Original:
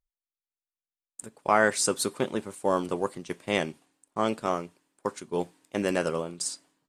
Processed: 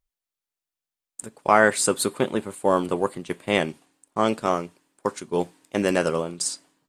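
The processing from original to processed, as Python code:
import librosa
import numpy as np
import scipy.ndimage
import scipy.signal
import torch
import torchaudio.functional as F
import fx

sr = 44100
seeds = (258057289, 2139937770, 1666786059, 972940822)

y = fx.peak_eq(x, sr, hz=5700.0, db=-8.5, octaves=0.42, at=(1.6, 3.69))
y = F.gain(torch.from_numpy(y), 5.0).numpy()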